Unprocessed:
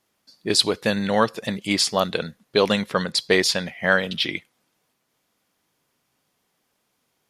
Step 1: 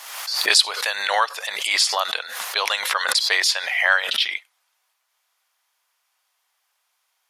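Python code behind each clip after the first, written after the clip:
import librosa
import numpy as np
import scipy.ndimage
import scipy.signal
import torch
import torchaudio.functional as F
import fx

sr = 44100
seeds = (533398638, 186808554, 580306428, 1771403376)

y = scipy.signal.sosfilt(scipy.signal.butter(4, 790.0, 'highpass', fs=sr, output='sos'), x)
y = fx.pre_swell(y, sr, db_per_s=49.0)
y = F.gain(torch.from_numpy(y), 2.0).numpy()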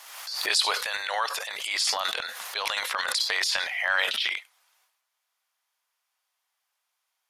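y = fx.transient(x, sr, attack_db=0, sustain_db=12)
y = F.gain(torch.from_numpy(y), -8.5).numpy()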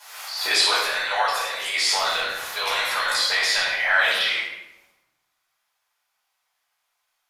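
y = fx.room_shoebox(x, sr, seeds[0], volume_m3=350.0, walls='mixed', distance_m=4.8)
y = F.gain(torch.from_numpy(y), -6.5).numpy()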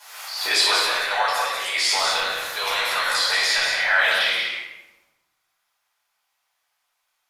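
y = x + 10.0 ** (-5.5 / 20.0) * np.pad(x, (int(185 * sr / 1000.0), 0))[:len(x)]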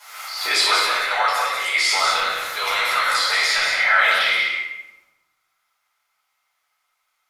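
y = fx.small_body(x, sr, hz=(1300.0, 2100.0), ring_ms=40, db=13)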